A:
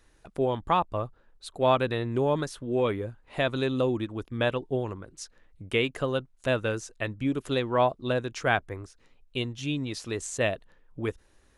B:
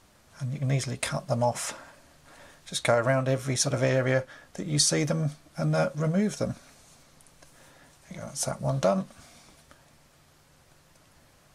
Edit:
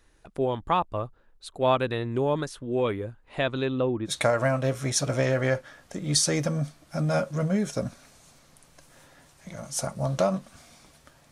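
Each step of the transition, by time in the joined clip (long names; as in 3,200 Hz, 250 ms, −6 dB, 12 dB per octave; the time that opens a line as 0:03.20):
A
0:03.35–0:04.11: low-pass filter 9,300 Hz → 1,300 Hz
0:04.08: continue with B from 0:02.72, crossfade 0.06 s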